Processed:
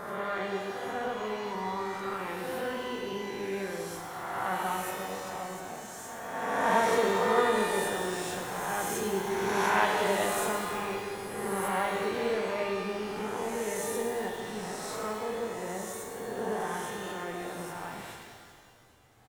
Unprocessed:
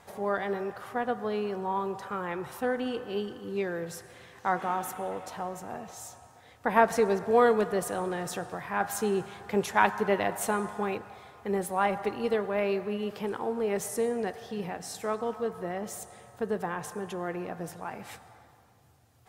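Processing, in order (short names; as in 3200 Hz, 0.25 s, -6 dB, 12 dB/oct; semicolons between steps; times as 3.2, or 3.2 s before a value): spectral swells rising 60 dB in 1.94 s; frequency-shifting echo 0.406 s, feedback 62%, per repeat -100 Hz, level -22 dB; shimmer reverb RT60 1.6 s, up +12 st, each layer -8 dB, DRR 1 dB; gain -8 dB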